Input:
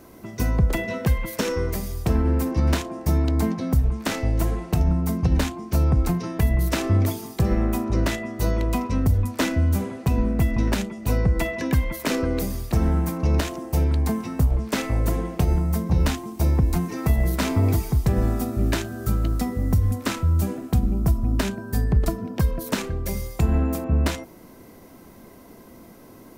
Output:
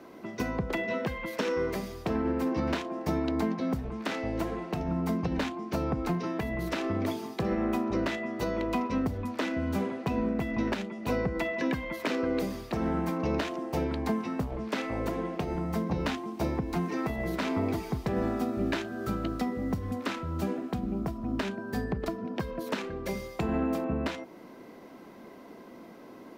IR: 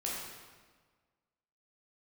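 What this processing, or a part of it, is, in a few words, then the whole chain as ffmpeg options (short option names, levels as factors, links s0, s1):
DJ mixer with the lows and highs turned down: -filter_complex "[0:a]acrossover=split=180 4700:gain=0.126 1 0.158[s0][s1][s2];[s0][s1][s2]amix=inputs=3:normalize=0,alimiter=limit=0.112:level=0:latency=1:release=298"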